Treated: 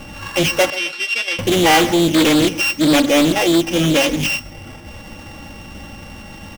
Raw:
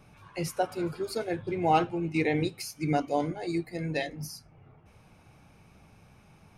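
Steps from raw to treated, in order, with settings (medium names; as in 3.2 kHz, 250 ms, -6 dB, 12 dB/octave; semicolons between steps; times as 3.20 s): sorted samples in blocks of 16 samples; comb 3.6 ms, depth 66%; saturation -23.5 dBFS, distortion -10 dB; 0.70–1.39 s: band-pass filter 3.4 kHz, Q 1.6; feedback delay 133 ms, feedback 35%, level -22 dB; loudness maximiser +28.5 dB; loudspeaker Doppler distortion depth 0.43 ms; trim -7 dB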